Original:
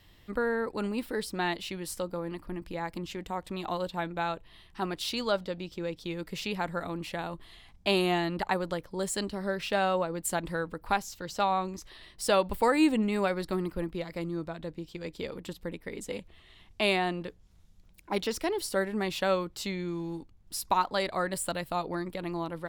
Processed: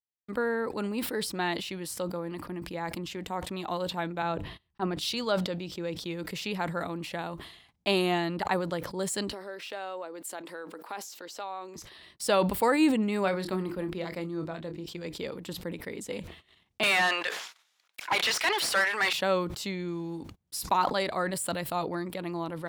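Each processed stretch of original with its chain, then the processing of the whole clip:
0:04.22–0:05.14: spectral tilt −1.5 dB per octave + mains-hum notches 50/100/150/200/250/300 Hz + multiband upward and downward expander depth 70%
0:09.32–0:11.76: high-pass filter 290 Hz 24 dB per octave + downward compressor 2 to 1, threshold −42 dBFS
0:13.23–0:14.86: high-shelf EQ 7,800 Hz −4.5 dB + mains-hum notches 50/100/150/200/250/300/350 Hz + double-tracking delay 26 ms −11 dB
0:16.83–0:19.13: high-pass filter 1,300 Hz + mid-hump overdrive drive 29 dB, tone 2,700 Hz, clips at −14.5 dBFS
whole clip: high-pass filter 96 Hz 12 dB per octave; noise gate −52 dBFS, range −51 dB; level that may fall only so fast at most 68 dB per second

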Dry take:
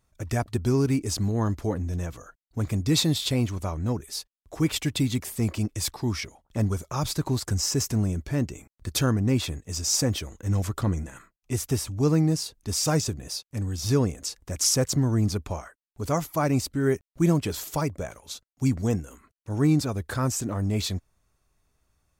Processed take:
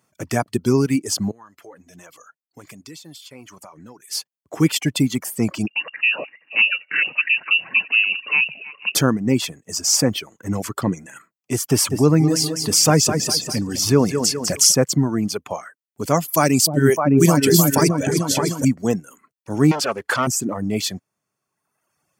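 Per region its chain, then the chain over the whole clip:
0:01.31–0:04.11: low-shelf EQ 430 Hz −12 dB + downward compressor 12 to 1, threshold −38 dBFS + flanger 1.2 Hz, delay 0.3 ms, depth 2.2 ms, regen −75%
0:05.67–0:08.95: feedback delay that plays each chunk backwards 238 ms, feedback 57%, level −12 dB + voice inversion scrambler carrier 2,800 Hz
0:11.70–0:14.72: repeating echo 200 ms, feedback 36%, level −8 dB + envelope flattener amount 50%
0:16.28–0:18.65: high-shelf EQ 3,100 Hz +11.5 dB + echo whose low-pass opens from repeat to repeat 305 ms, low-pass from 400 Hz, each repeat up 2 octaves, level 0 dB
0:19.71–0:20.27: gain into a clipping stage and back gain 27.5 dB + mid-hump overdrive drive 16 dB, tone 3,900 Hz, clips at −13 dBFS + highs frequency-modulated by the lows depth 0.23 ms
whole clip: high-pass filter 140 Hz 24 dB per octave; reverb reduction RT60 1.2 s; notch filter 3,800 Hz, Q 7.2; level +8 dB

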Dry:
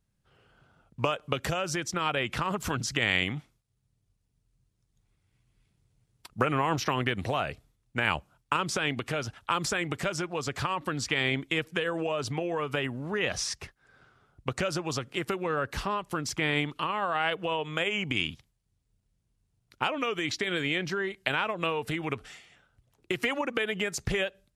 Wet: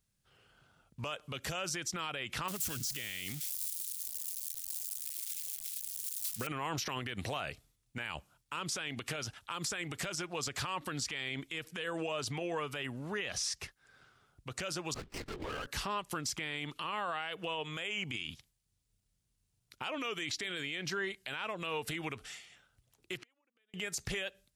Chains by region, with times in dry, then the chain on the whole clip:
0:02.48–0:06.47: spike at every zero crossing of −27.5 dBFS + parametric band 950 Hz −10 dB 1.4 octaves
0:14.94–0:15.67: downward compressor 3 to 1, threshold −32 dBFS + linear-prediction vocoder at 8 kHz whisper + windowed peak hold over 9 samples
0:23.17–0:23.74: low-pass that shuts in the quiet parts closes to 2,100 Hz, open at −28 dBFS + downward compressor 1.5 to 1, threshold −37 dBFS + gate with flip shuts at −34 dBFS, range −40 dB
whole clip: high-shelf EQ 2,300 Hz +11 dB; brickwall limiter −20.5 dBFS; level −6 dB

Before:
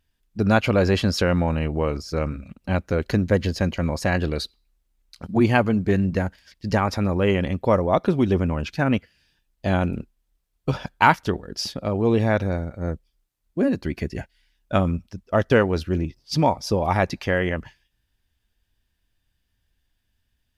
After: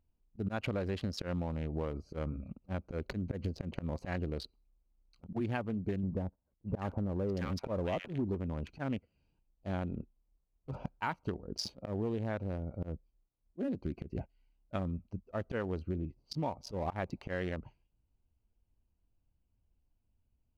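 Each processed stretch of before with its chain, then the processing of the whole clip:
0:06.03–0:08.35: noise gate −47 dBFS, range −8 dB + leveller curve on the samples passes 1 + multiband delay without the direct sound lows, highs 650 ms, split 1,200 Hz
whole clip: adaptive Wiener filter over 25 samples; volume swells 157 ms; downward compressor 6 to 1, threshold −29 dBFS; level −3.5 dB

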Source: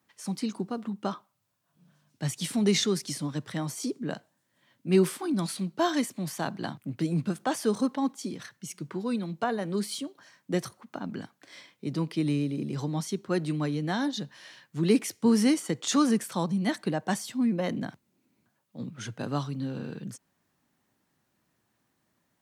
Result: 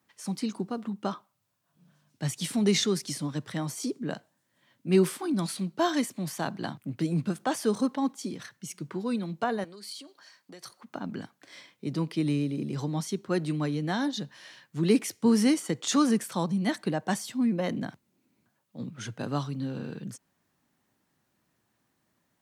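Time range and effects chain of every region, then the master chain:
0:09.64–0:10.82: parametric band 4,500 Hz +10 dB 0.2 octaves + downward compressor 12 to 1, threshold −36 dBFS + high-pass filter 640 Hz 6 dB per octave
whole clip: no processing

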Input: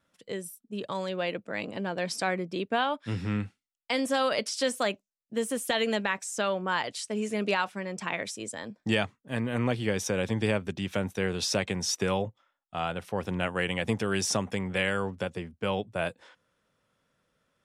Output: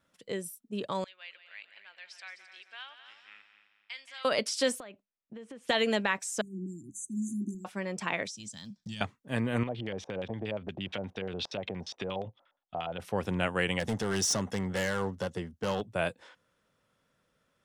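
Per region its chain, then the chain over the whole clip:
0:01.04–0:04.25: four-pole ladder band-pass 2,900 Hz, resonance 20% + echo machine with several playback heads 87 ms, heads second and third, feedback 46%, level −12 dB
0:04.80–0:05.69: low-pass filter 3,100 Hz + downward compressor 8 to 1, threshold −42 dBFS
0:06.41–0:07.65: linear-phase brick-wall band-stop 370–6,000 Hz + mains-hum notches 50/100/150/200 Hz
0:08.27–0:09.01: one scale factor per block 7 bits + drawn EQ curve 120 Hz 0 dB, 180 Hz +4 dB, 450 Hz −25 dB, 720 Hz −17 dB, 2,300 Hz −11 dB, 3,300 Hz +1 dB, 5,800 Hz +7 dB, 13,000 Hz −12 dB + downward compressor 3 to 1, threshold −40 dBFS
0:09.63–0:13.00: downward compressor 3 to 1, threshold −36 dBFS + auto-filter low-pass square 8.5 Hz 710–3,400 Hz
0:13.79–0:15.87: hard clipping −25.5 dBFS + parametric band 6,100 Hz +4.5 dB 0.34 octaves + notch filter 2,400 Hz, Q 5.5
whole clip: no processing

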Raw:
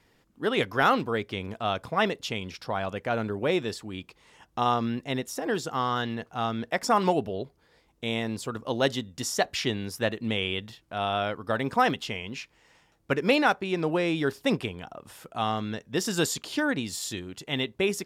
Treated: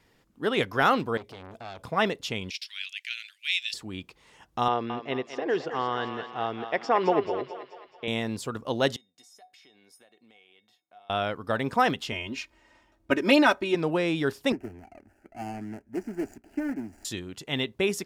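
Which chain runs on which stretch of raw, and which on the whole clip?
0:01.17–0:01.84: parametric band 1,500 Hz −11 dB 0.9 octaves + downward compressor 2.5 to 1, threshold −32 dBFS + saturating transformer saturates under 2,100 Hz
0:02.50–0:03.74: Butterworth high-pass 2,300 Hz + parametric band 2,900 Hz +9.5 dB 2.5 octaves
0:04.68–0:08.08: loudspeaker in its box 170–4,300 Hz, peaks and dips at 210 Hz −10 dB, 410 Hz +5 dB, 1,300 Hz −5 dB, 3,800 Hz −7 dB + feedback echo with a high-pass in the loop 216 ms, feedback 56%, high-pass 570 Hz, level −7.5 dB
0:08.96–0:11.10: high-pass filter 310 Hz + downward compressor 10 to 1, threshold −35 dBFS + tuned comb filter 740 Hz, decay 0.21 s, harmonics odd, mix 90%
0:12.12–0:13.75: comb filter 3.2 ms, depth 96% + one half of a high-frequency compander decoder only
0:14.52–0:17.05: running median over 41 samples + high-shelf EQ 11,000 Hz −6.5 dB + phaser with its sweep stopped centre 740 Hz, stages 8
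whole clip: no processing

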